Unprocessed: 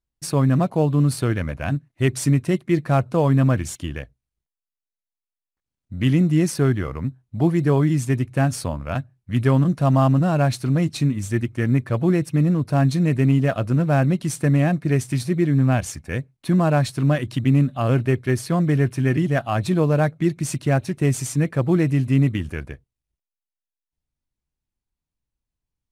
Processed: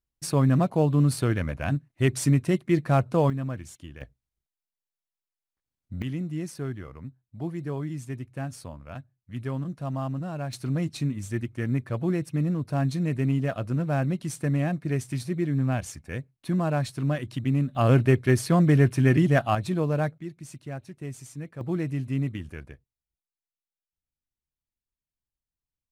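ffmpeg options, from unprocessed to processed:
-af "asetnsamples=n=441:p=0,asendcmd='3.3 volume volume -14dB;4.01 volume volume -3.5dB;6.02 volume volume -14dB;10.53 volume volume -7.5dB;17.75 volume volume 0dB;19.55 volume volume -7dB;20.18 volume volume -17dB;21.61 volume volume -10dB',volume=-3dB"

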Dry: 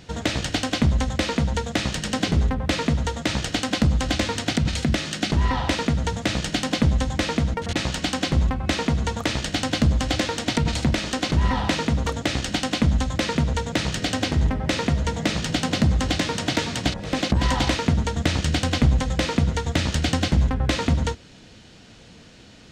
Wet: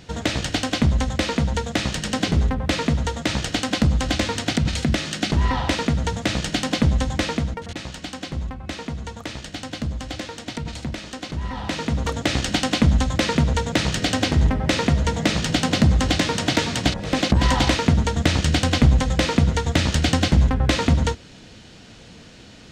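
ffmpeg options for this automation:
-af "volume=12dB,afade=t=out:st=7.19:d=0.57:silence=0.354813,afade=t=in:st=11.51:d=0.86:silence=0.281838"

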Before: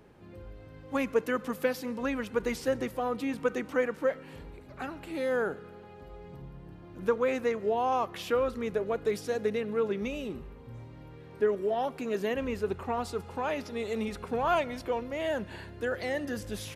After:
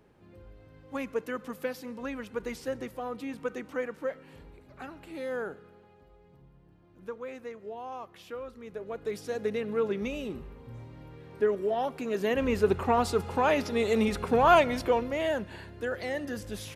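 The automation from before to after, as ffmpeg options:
-af "volume=14dB,afade=t=out:st=5.39:d=0.78:silence=0.446684,afade=t=in:st=8.63:d=1.1:silence=0.237137,afade=t=in:st=12.15:d=0.5:silence=0.473151,afade=t=out:st=14.77:d=0.72:silence=0.398107"

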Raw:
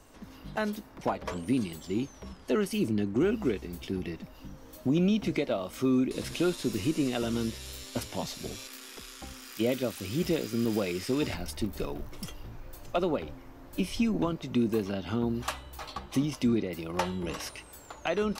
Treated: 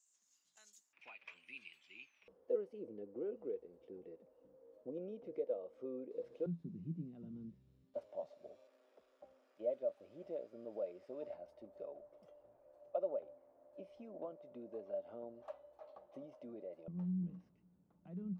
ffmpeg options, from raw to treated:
-af "asetnsamples=n=441:p=0,asendcmd='0.93 bandpass f 2500;2.28 bandpass f 490;6.46 bandpass f 170;7.94 bandpass f 590;16.88 bandpass f 180',bandpass=f=7k:t=q:w=12:csg=0"

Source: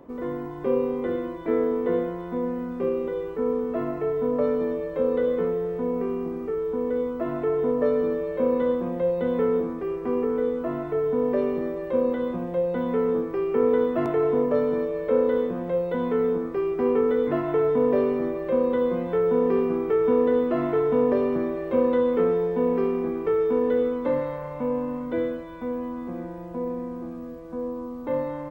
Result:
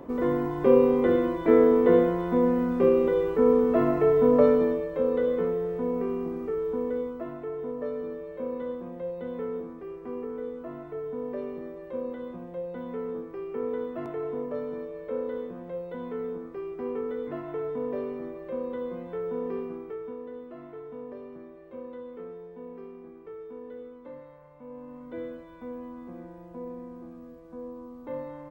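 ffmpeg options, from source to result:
-af "volume=15.5dB,afade=t=out:st=4.4:d=0.48:silence=0.446684,afade=t=out:st=6.72:d=0.66:silence=0.375837,afade=t=out:st=19.55:d=0.62:silence=0.354813,afade=t=in:st=24.61:d=0.79:silence=0.298538"

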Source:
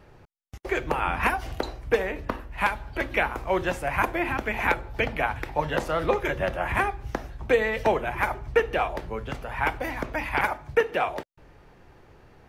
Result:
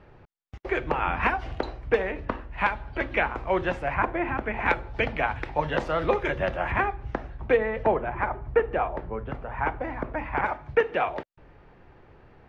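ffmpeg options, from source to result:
-af "asetnsamples=n=441:p=0,asendcmd='3.94 lowpass f 1900;4.66 lowpass f 4200;6.71 lowpass f 2500;7.57 lowpass f 1500;10.46 lowpass f 3000',lowpass=3.2k"

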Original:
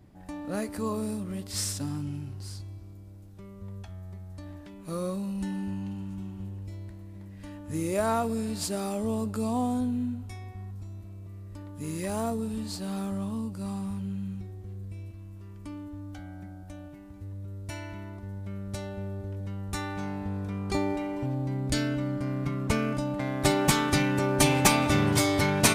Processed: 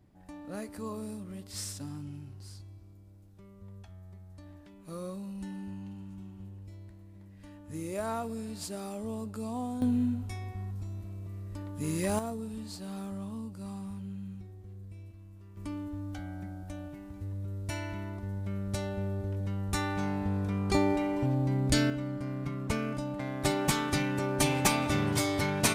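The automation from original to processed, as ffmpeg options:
-af "asetnsamples=n=441:p=0,asendcmd='9.82 volume volume 2dB;12.19 volume volume -6.5dB;15.57 volume volume 2dB;21.9 volume volume -5dB',volume=-7.5dB"

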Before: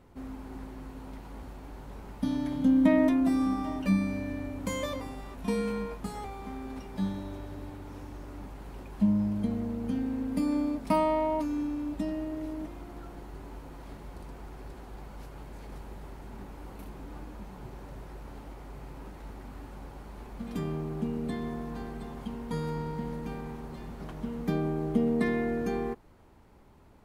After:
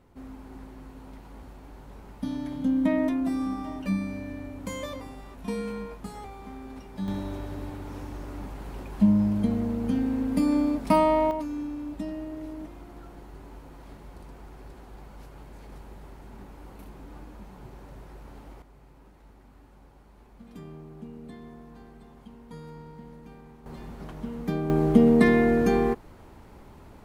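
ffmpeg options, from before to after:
-af "asetnsamples=n=441:p=0,asendcmd='7.08 volume volume 5dB;11.31 volume volume -1.5dB;18.62 volume volume -10dB;23.66 volume volume 0.5dB;24.7 volume volume 9dB',volume=-2dB"

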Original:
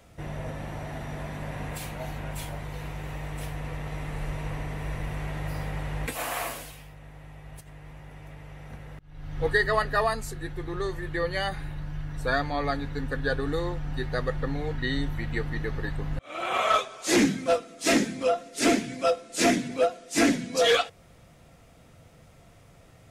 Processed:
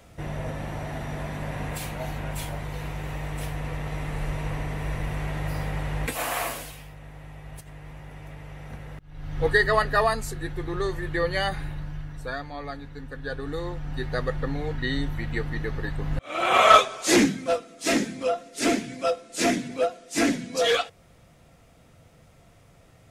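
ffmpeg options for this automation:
-af "volume=19.5dB,afade=t=out:st=11.62:d=0.73:silence=0.298538,afade=t=in:st=13.15:d=0.98:silence=0.375837,afade=t=in:st=15.96:d=0.78:silence=0.398107,afade=t=out:st=16.74:d=0.58:silence=0.316228"

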